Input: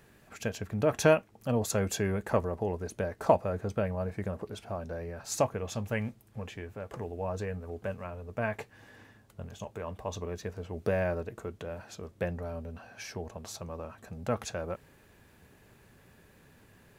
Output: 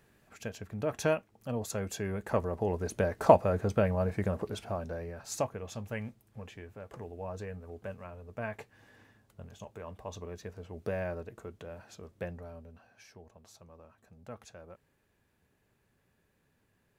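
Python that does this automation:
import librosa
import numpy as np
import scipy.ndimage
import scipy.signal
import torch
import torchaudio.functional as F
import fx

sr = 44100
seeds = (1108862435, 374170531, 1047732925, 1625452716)

y = fx.gain(x, sr, db=fx.line((1.96, -6.0), (2.93, 3.5), (4.5, 3.5), (5.51, -5.5), (12.2, -5.5), (13.09, -14.5)))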